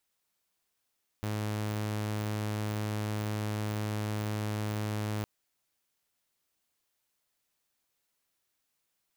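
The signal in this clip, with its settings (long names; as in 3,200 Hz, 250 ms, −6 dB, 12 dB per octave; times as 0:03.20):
tone saw 106 Hz −28.5 dBFS 4.01 s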